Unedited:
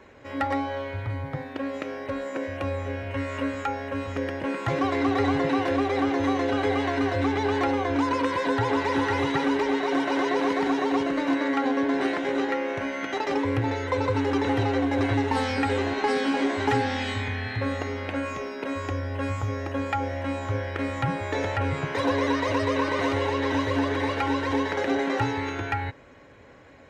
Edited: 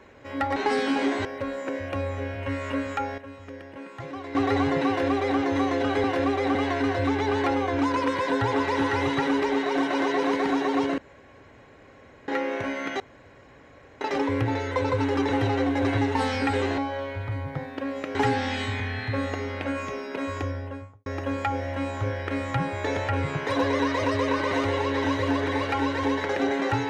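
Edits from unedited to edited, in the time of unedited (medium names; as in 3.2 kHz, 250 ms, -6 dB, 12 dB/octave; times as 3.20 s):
0.56–1.93 s: swap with 15.94–16.63 s
3.86–5.03 s: gain -11.5 dB
5.56–6.07 s: copy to 6.72 s
11.15–12.45 s: room tone
13.17 s: insert room tone 1.01 s
18.86–19.54 s: studio fade out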